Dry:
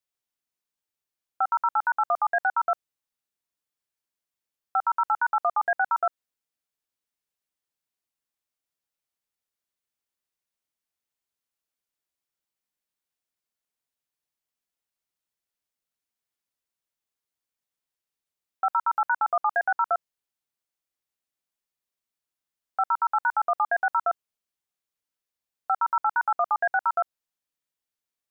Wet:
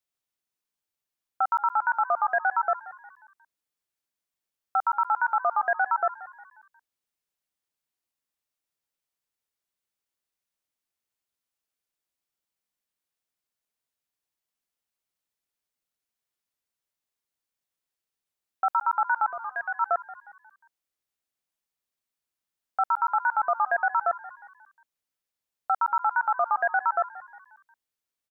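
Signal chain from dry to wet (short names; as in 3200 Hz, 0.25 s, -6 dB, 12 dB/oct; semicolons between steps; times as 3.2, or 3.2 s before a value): 19.29–19.8 bell 1000 Hz -> 420 Hz -12.5 dB 2.3 oct; frequency-shifting echo 0.179 s, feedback 47%, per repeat +58 Hz, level -17.5 dB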